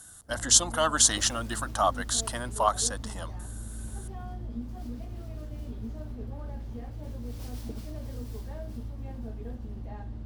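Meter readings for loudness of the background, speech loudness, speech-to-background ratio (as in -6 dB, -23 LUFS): -40.0 LUFS, -25.0 LUFS, 15.0 dB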